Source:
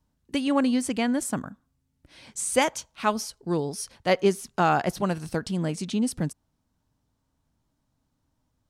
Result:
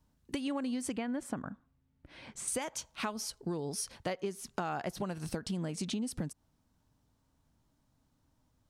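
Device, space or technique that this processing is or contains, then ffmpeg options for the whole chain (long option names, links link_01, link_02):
serial compression, peaks first: -filter_complex "[0:a]asettb=1/sr,asplit=3[link_01][link_02][link_03];[link_01]atrim=end=0.964[link_04];[link_02]atrim=start=0.96:end=2.48,asetpts=PTS-STARTPTS,afade=type=in:duration=0.004:curve=qsin,afade=type=out:start_time=1.516:duration=0.004:curve=qsin,bass=frequency=250:gain=-1,treble=frequency=4000:gain=-14[link_05];[link_03]atrim=start=2.476[link_06];[link_04][link_05]acrossfade=duration=0.004:curve1=hsin:curve2=qsin[link_07];[link_07][link_06]acrossfade=duration=0.004:curve1=qsin:curve2=hsin,acompressor=threshold=-29dB:ratio=5,acompressor=threshold=-35dB:ratio=2.5,volume=1dB"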